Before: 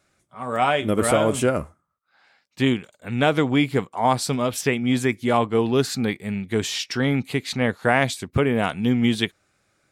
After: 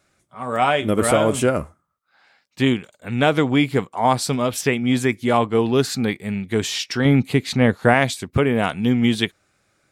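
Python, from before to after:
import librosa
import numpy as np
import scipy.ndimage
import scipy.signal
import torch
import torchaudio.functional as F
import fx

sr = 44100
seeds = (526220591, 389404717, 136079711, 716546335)

y = fx.low_shelf(x, sr, hz=480.0, db=6.0, at=(7.05, 7.94))
y = y * librosa.db_to_amplitude(2.0)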